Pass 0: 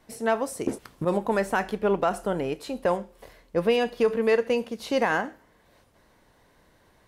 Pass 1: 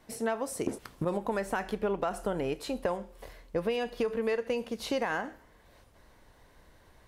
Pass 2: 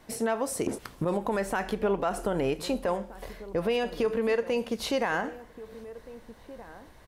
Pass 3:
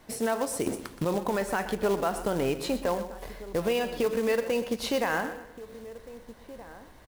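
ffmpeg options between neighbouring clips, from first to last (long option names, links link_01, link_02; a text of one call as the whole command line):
ffmpeg -i in.wav -af "asubboost=boost=2:cutoff=100,acompressor=threshold=-27dB:ratio=6" out.wav
ffmpeg -i in.wav -filter_complex "[0:a]alimiter=limit=-23.5dB:level=0:latency=1:release=41,asplit=2[link_01][link_02];[link_02]adelay=1574,volume=-16dB,highshelf=frequency=4000:gain=-35.4[link_03];[link_01][link_03]amix=inputs=2:normalize=0,volume=5dB" out.wav
ffmpeg -i in.wav -af "aecho=1:1:123|246|369:0.224|0.0761|0.0259,acrusher=bits=4:mode=log:mix=0:aa=0.000001" out.wav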